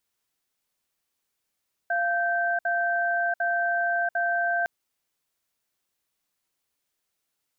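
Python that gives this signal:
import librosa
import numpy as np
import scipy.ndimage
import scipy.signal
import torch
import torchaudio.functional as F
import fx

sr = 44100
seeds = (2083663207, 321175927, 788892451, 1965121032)

y = fx.cadence(sr, length_s=2.76, low_hz=693.0, high_hz=1560.0, on_s=0.69, off_s=0.06, level_db=-25.0)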